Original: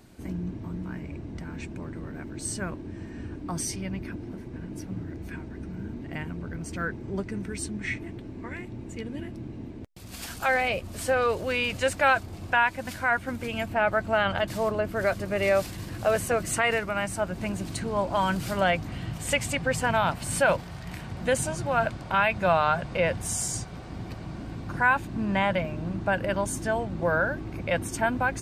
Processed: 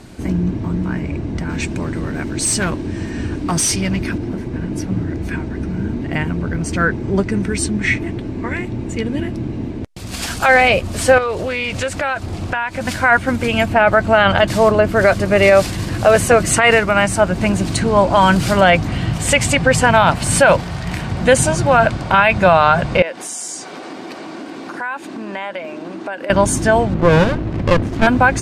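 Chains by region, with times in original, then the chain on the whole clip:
1.49–4.18 s: treble shelf 2.8 kHz +8 dB + hard clipper -28 dBFS
11.18–12.81 s: compression 4:1, threshold -33 dBFS + loudspeaker Doppler distortion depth 0.22 ms
23.02–26.30 s: Chebyshev high-pass 290 Hz, order 3 + compression 3:1, threshold -41 dBFS
26.94–28.07 s: low-pass 3.4 kHz + sliding maximum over 33 samples
whole clip: low-pass 10 kHz 12 dB/octave; loudness maximiser +15.5 dB; trim -1 dB

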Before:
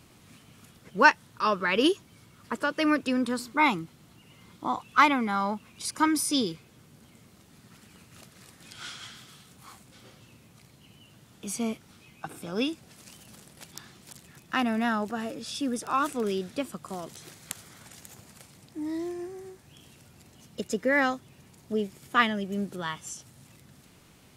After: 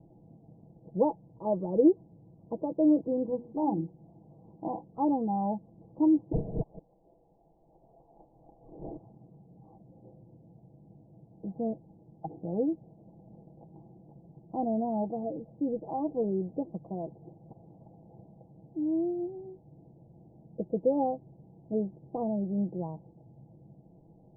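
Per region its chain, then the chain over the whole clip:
3.01–4.91 s: hum notches 60/120/180/240/300/360/420/480/540 Hz + tape noise reduction on one side only encoder only
6.32–8.97 s: chunks repeated in reverse 156 ms, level -2 dB + treble shelf 2.1 kHz +5.5 dB + frequency inversion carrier 3.6 kHz
whole clip: steep low-pass 830 Hz 72 dB/octave; comb 6.1 ms, depth 56%

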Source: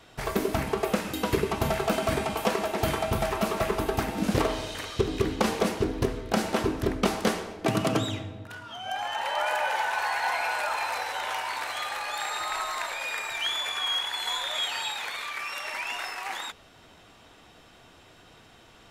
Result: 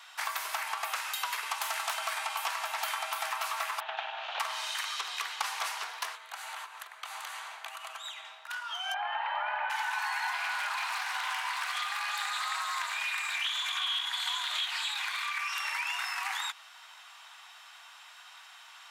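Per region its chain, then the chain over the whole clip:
1.51–1.94 s: high-pass 340 Hz 6 dB/octave + peaking EQ 10 kHz +6 dB 1.7 oct + loudspeaker Doppler distortion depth 0.3 ms
3.80–4.40 s: comb filter that takes the minimum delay 0.3 ms + cabinet simulation 350–3200 Hz, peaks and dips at 370 Hz -6 dB, 680 Hz +6 dB, 1.1 kHz -7 dB, 2.1 kHz -6 dB + doubling 48 ms -13 dB
6.15–8.25 s: compression 8:1, threshold -36 dBFS + peaking EQ 5.3 kHz -10 dB 0.25 oct
8.94–9.70 s: Bessel low-pass 2.1 kHz, order 6 + peaking EQ 640 Hz +9.5 dB 0.43 oct
10.32–15.58 s: comb of notches 440 Hz + loudspeaker Doppler distortion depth 0.22 ms
whole clip: steep high-pass 880 Hz 36 dB/octave; compression 4:1, threshold -36 dBFS; trim +5 dB

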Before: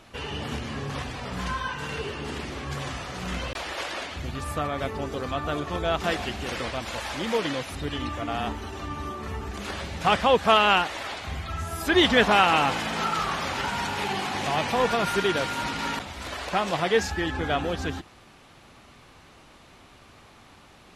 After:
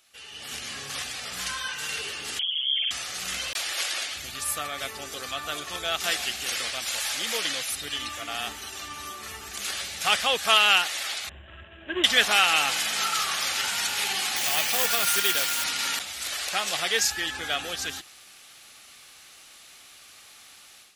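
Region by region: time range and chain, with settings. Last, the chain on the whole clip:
2.39–2.91 s: resonances exaggerated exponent 3 + distance through air 210 m + frequency inversion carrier 3.3 kHz
11.29–12.04 s: median filter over 41 samples + rippled EQ curve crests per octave 1.3, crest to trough 11 dB + careless resampling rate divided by 6×, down none, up filtered
14.36–15.64 s: band-stop 3.9 kHz, Q 25 + short-mantissa float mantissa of 2-bit
whole clip: pre-emphasis filter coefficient 0.97; band-stop 980 Hz, Q 6.4; level rider gain up to 13 dB

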